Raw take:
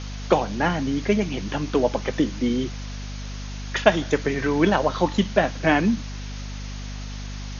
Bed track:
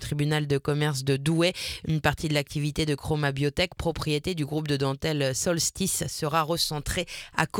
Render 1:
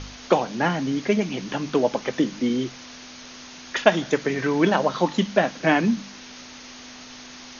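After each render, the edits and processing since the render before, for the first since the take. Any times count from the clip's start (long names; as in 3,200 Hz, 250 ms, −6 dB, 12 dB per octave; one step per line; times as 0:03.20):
hum removal 50 Hz, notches 4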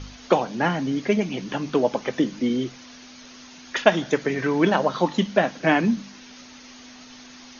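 broadband denoise 6 dB, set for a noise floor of −42 dBFS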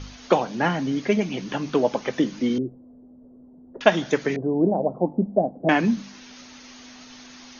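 0:02.58–0:03.81: inverse Chebyshev low-pass filter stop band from 3,200 Hz, stop band 80 dB
0:04.36–0:05.69: elliptic low-pass filter 740 Hz, stop band 80 dB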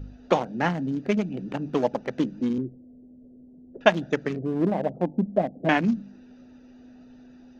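adaptive Wiener filter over 41 samples
dynamic equaliser 390 Hz, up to −4 dB, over −31 dBFS, Q 1.2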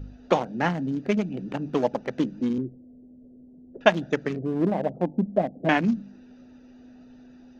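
no processing that can be heard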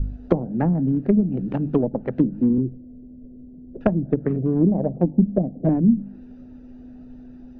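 treble cut that deepens with the level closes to 370 Hz, closed at −19 dBFS
spectral tilt −3.5 dB per octave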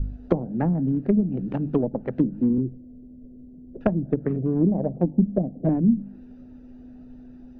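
level −2.5 dB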